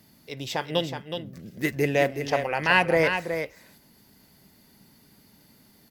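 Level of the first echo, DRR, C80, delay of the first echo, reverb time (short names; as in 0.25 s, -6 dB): -7.5 dB, none, none, 0.37 s, none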